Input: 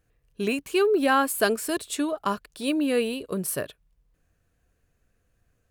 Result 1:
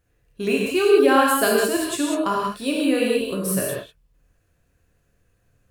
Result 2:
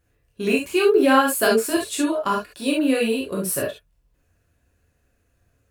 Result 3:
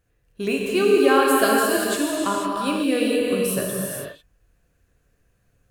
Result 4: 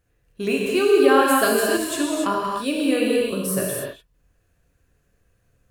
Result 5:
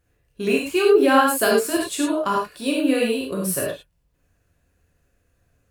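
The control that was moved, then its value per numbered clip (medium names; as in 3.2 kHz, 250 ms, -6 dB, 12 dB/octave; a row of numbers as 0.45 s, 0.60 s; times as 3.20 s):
gated-style reverb, gate: 220 ms, 90 ms, 520 ms, 320 ms, 130 ms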